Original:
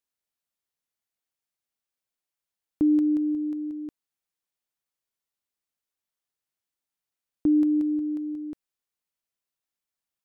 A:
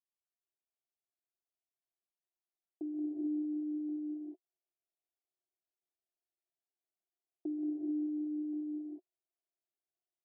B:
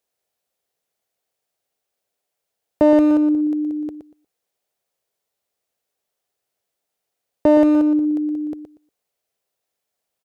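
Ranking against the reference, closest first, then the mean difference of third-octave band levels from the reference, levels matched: A, B; 3.5, 5.0 dB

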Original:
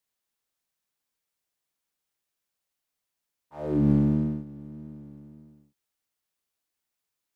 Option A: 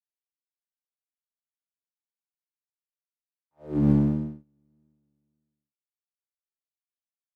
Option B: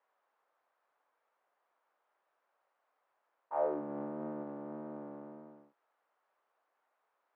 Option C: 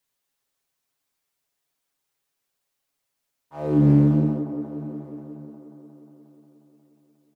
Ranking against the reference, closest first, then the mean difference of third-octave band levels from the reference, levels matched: C, A, B; 3.0, 6.5, 9.0 dB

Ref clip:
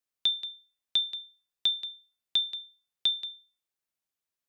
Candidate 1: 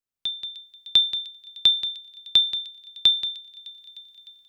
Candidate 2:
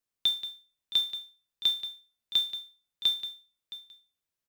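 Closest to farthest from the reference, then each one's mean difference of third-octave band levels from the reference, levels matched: 1, 2; 1.5, 4.5 dB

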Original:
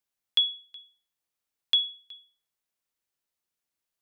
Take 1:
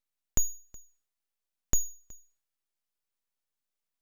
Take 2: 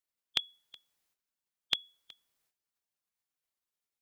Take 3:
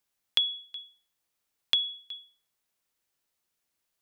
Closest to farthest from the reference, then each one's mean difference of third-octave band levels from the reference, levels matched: 3, 2, 1; 2.0, 5.0, 8.0 dB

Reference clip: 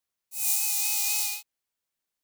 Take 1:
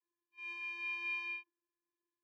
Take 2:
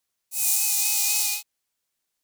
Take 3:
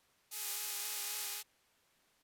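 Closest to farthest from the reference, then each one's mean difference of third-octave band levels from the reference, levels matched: 2, 3, 1; 2.0, 9.0, 17.5 dB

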